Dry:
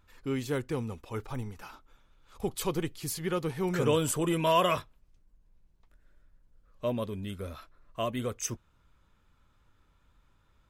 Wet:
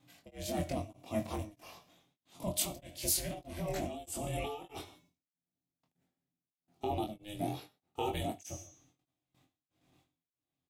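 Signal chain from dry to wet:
high-pass filter 90 Hz 12 dB per octave
hum removal 403.2 Hz, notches 19
noise gate with hold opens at −60 dBFS
compressor whose output falls as the input rises −33 dBFS, ratio −1
phaser with its sweep stopped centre 540 Hz, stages 4
ring modulation 210 Hz
double-tracking delay 23 ms −3.5 dB
reverb whose tail is shaped and stops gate 200 ms falling, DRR 11.5 dB
tremolo along a rectified sine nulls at 1.6 Hz
level +4 dB

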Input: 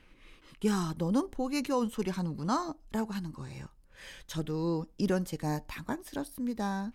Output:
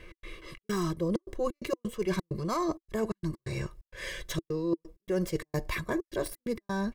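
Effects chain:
stylus tracing distortion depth 0.055 ms
gate pattern "x.xxx.xxxx.xx." 130 BPM −60 dB
comb filter 1.8 ms, depth 96%
hollow resonant body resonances 330/2,000 Hz, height 15 dB, ringing for 40 ms
reversed playback
downward compressor 10 to 1, threshold −32 dBFS, peak gain reduction 15.5 dB
reversed playback
level +5.5 dB

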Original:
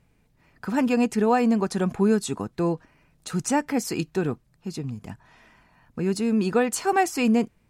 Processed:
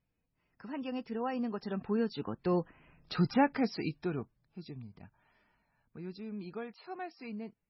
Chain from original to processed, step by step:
source passing by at 0:03.05, 18 m/s, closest 6.5 metres
MP3 16 kbit/s 24,000 Hz

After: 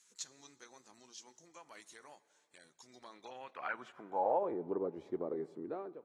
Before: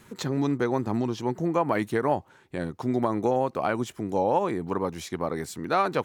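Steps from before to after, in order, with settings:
fade-out on the ending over 0.61 s
in parallel at −3 dB: downward compressor 10 to 1, threshold −33 dBFS, peak gain reduction 15 dB
on the sum: band-pass filter sweep 6,600 Hz → 390 Hz, 0:02.82–0:04.67
convolution reverb RT60 2.4 s, pre-delay 5 ms, DRR 19 dB
level −6 dB
AAC 32 kbit/s 32,000 Hz

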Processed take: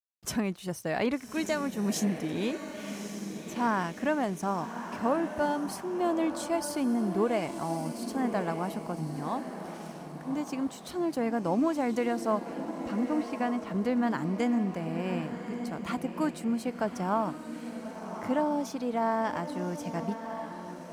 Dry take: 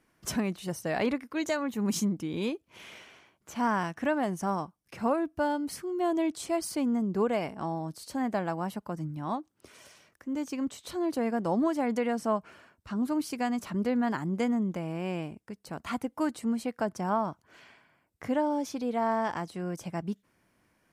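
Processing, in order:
0:12.94–0:13.71: low-pass filter 2,900 Hz 12 dB per octave
feedback delay with all-pass diffusion 1,155 ms, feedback 42%, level −8 dB
dead-zone distortion −57.5 dBFS

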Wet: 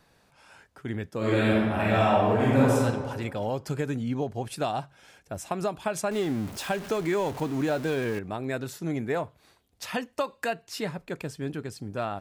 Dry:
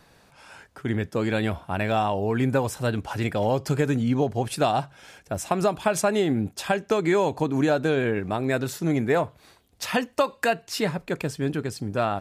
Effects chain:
0:01.17–0:02.82: thrown reverb, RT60 1.6 s, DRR −8 dB
0:06.11–0:08.19: converter with a step at zero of −28.5 dBFS
level −6.5 dB

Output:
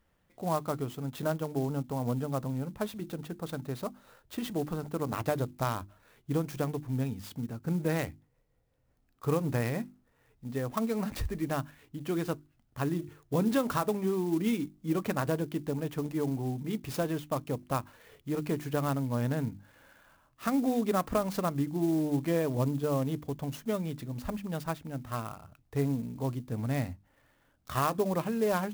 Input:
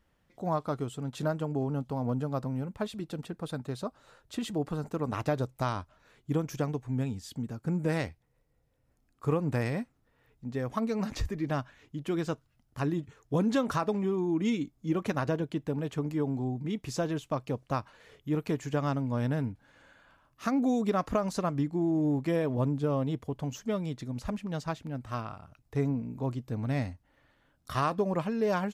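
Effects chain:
mains-hum notches 50/100/150/200/250/300/350 Hz
converter with an unsteady clock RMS 0.034 ms

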